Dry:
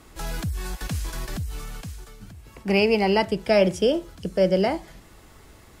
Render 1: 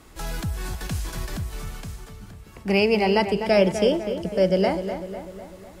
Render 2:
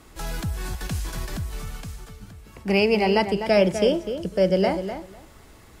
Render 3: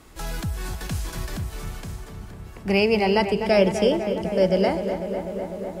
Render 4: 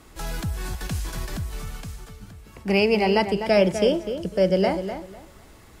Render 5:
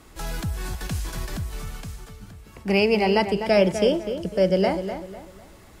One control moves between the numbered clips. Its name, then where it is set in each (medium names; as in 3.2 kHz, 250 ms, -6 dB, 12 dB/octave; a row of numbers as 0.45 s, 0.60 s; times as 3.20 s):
filtered feedback delay, feedback: 56%, 16%, 83%, 23%, 35%